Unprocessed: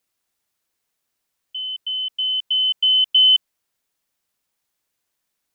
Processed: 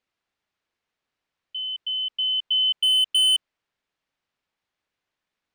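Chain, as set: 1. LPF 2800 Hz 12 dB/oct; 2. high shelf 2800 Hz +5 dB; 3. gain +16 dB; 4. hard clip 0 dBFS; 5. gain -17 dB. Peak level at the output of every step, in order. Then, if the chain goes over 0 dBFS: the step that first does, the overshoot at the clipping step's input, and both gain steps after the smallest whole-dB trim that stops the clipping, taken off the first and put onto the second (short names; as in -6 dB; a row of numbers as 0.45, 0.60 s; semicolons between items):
-13.0, -10.5, +5.5, 0.0, -17.0 dBFS; step 3, 5.5 dB; step 3 +10 dB, step 5 -11 dB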